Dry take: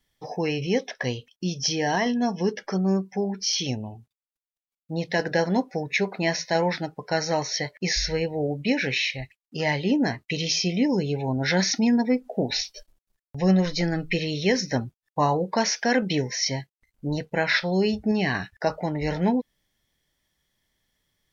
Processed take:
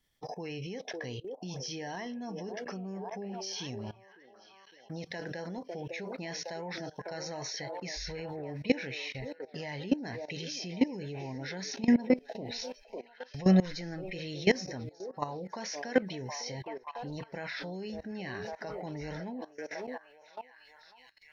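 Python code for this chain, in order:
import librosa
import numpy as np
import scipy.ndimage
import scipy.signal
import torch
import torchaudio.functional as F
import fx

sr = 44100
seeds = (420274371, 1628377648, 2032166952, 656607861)

y = fx.echo_stepped(x, sr, ms=553, hz=470.0, octaves=0.7, feedback_pct=70, wet_db=-7.0)
y = fx.level_steps(y, sr, step_db=19)
y = y * librosa.db_to_amplitude(-1.0)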